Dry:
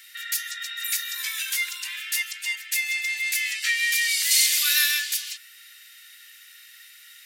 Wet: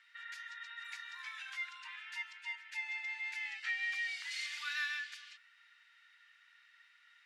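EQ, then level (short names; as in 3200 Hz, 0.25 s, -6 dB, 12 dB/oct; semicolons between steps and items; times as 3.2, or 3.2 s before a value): band-pass 800 Hz, Q 5.1; air absorption 69 m; +9.0 dB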